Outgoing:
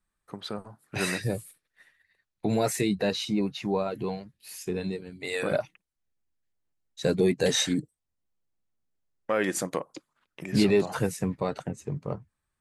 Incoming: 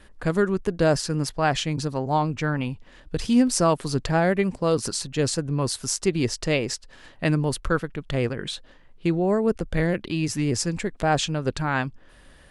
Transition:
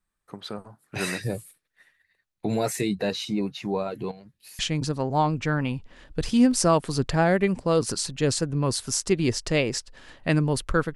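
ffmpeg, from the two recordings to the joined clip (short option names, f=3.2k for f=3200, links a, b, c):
-filter_complex "[0:a]asettb=1/sr,asplit=3[a][b][c];[a]atrim=end=4.114[d];[b]atrim=start=4.11:end=4.59,asetpts=PTS-STARTPTS,afade=t=in:d=0.004:c=qsin,afade=t=out:st=0.476:d=0.004:c=qsin,acompressor=threshold=-42dB:ratio=5:attack=3.2:release=140:knee=1:detection=peak[e];[c]atrim=start=4.586[f];[d][e]acrossfade=d=0.004:c1=hsin:c2=qsin[g];[g][f]acrossfade=d=0.004:c1=qsin:c2=hsin,apad=whole_dur=10.95,atrim=end=10.95,atrim=end=4.592[h];[1:a]atrim=start=1.548:end=7.91[i];[h][i]acrossfade=d=0.004:c1=hsin:c2=hsin"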